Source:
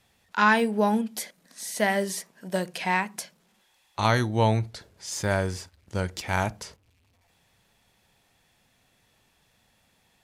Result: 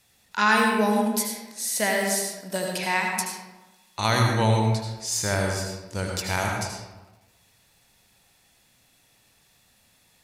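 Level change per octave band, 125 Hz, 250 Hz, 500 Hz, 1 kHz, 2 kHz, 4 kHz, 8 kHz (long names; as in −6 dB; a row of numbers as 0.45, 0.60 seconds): +2.5, +1.0, +1.0, +1.0, +2.5, +5.5, +8.0 decibels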